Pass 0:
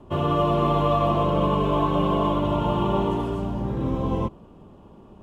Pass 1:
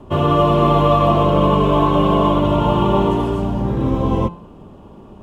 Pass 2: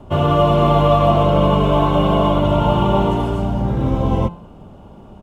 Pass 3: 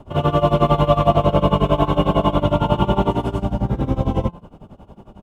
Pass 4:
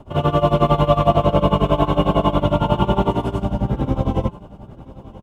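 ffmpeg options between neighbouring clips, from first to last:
-af "bandreject=f=172.8:t=h:w=4,bandreject=f=345.6:t=h:w=4,bandreject=f=518.4:t=h:w=4,bandreject=f=691.2:t=h:w=4,bandreject=f=864:t=h:w=4,bandreject=f=1.0368k:t=h:w=4,bandreject=f=1.2096k:t=h:w=4,bandreject=f=1.3824k:t=h:w=4,bandreject=f=1.5552k:t=h:w=4,bandreject=f=1.728k:t=h:w=4,bandreject=f=1.9008k:t=h:w=4,bandreject=f=2.0736k:t=h:w=4,bandreject=f=2.2464k:t=h:w=4,bandreject=f=2.4192k:t=h:w=4,bandreject=f=2.592k:t=h:w=4,bandreject=f=2.7648k:t=h:w=4,bandreject=f=2.9376k:t=h:w=4,bandreject=f=3.1104k:t=h:w=4,bandreject=f=3.2832k:t=h:w=4,bandreject=f=3.456k:t=h:w=4,bandreject=f=3.6288k:t=h:w=4,bandreject=f=3.8016k:t=h:w=4,bandreject=f=3.9744k:t=h:w=4,bandreject=f=4.1472k:t=h:w=4,bandreject=f=4.32k:t=h:w=4,bandreject=f=4.4928k:t=h:w=4,bandreject=f=4.6656k:t=h:w=4,volume=7.5dB"
-af "aecho=1:1:1.4:0.33"
-af "tremolo=f=11:d=0.89,volume=1.5dB"
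-af "aecho=1:1:978:0.1"

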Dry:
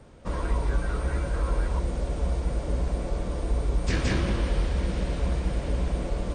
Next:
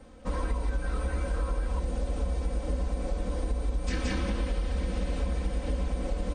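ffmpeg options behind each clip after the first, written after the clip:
-af "aecho=1:1:3.9:0.77,acompressor=threshold=-23dB:ratio=6,volume=-2dB"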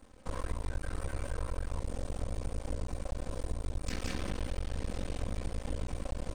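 -af "highshelf=f=6.8k:g=9,aeval=exprs='max(val(0),0)':c=same,volume=-3dB"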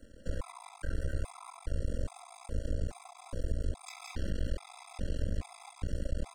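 -filter_complex "[0:a]acrossover=split=180[a][b];[b]acompressor=threshold=-43dB:ratio=3[c];[a][c]amix=inputs=2:normalize=0,afftfilt=real='re*gt(sin(2*PI*1.2*pts/sr)*(1-2*mod(floor(b*sr/1024/670),2)),0)':imag='im*gt(sin(2*PI*1.2*pts/sr)*(1-2*mod(floor(b*sr/1024/670),2)),0)':win_size=1024:overlap=0.75,volume=3.5dB"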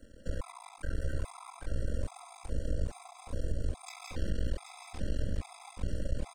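-af "aecho=1:1:780:0.398"

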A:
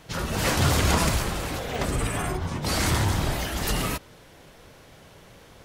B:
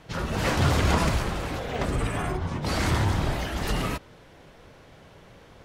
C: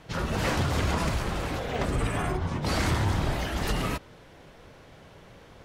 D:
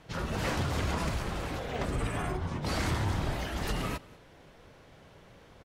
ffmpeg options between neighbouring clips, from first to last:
-af "lowpass=f=3.1k:p=1"
-af "alimiter=limit=-16.5dB:level=0:latency=1:release=247"
-af "aecho=1:1:189:0.0708,volume=-4.5dB"

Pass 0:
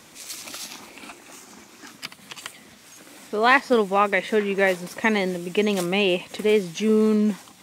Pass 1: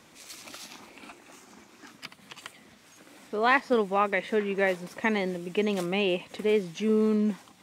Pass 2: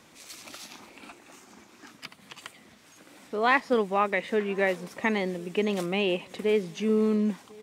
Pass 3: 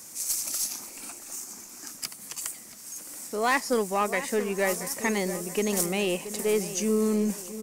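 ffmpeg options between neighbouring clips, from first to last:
-af "highshelf=f=4.6k:g=-7,volume=-5dB"
-filter_complex "[0:a]asplit=2[a][b];[b]adelay=1050,volume=-24dB,highshelf=f=4k:g=-23.6[c];[a][c]amix=inputs=2:normalize=0"
-filter_complex "[0:a]aexciter=amount=12.3:drive=2.9:freq=5.2k,aeval=exprs='(tanh(5.62*val(0)+0.15)-tanh(0.15))/5.62':c=same,asplit=2[a][b];[b]adelay=678,lowpass=f=2k:p=1,volume=-12dB,asplit=2[c][d];[d]adelay=678,lowpass=f=2k:p=1,volume=0.49,asplit=2[e][f];[f]adelay=678,lowpass=f=2k:p=1,volume=0.49,asplit=2[g][h];[h]adelay=678,lowpass=f=2k:p=1,volume=0.49,asplit=2[i][j];[j]adelay=678,lowpass=f=2k:p=1,volume=0.49[k];[a][c][e][g][i][k]amix=inputs=6:normalize=0"

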